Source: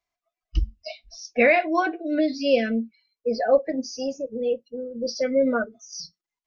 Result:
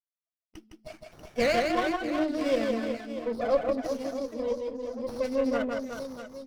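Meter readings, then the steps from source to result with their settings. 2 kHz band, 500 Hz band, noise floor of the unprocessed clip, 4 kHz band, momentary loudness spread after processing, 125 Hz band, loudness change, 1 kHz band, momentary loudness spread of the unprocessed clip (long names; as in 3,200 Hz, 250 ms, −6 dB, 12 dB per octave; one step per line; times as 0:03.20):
−8.0 dB, −5.0 dB, below −85 dBFS, −4.0 dB, 13 LU, can't be measured, −5.0 dB, −4.5 dB, 17 LU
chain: noise gate with hold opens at −41 dBFS
linear-phase brick-wall high-pass 200 Hz
on a send: reverse bouncing-ball delay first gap 160 ms, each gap 1.3×, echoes 5
on the sum: windowed peak hold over 9 samples
level −6.5 dB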